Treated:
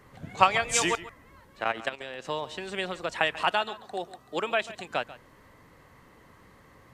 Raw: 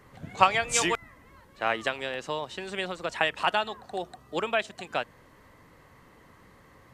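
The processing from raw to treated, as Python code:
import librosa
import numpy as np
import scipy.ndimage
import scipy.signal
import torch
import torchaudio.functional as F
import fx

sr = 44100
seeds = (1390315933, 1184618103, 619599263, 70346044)

y = fx.level_steps(x, sr, step_db=13, at=(1.64, 2.25))
y = fx.low_shelf(y, sr, hz=100.0, db=-12.0, at=(3.52, 4.62))
y = y + 10.0 ** (-17.0 / 20.0) * np.pad(y, (int(140 * sr / 1000.0), 0))[:len(y)]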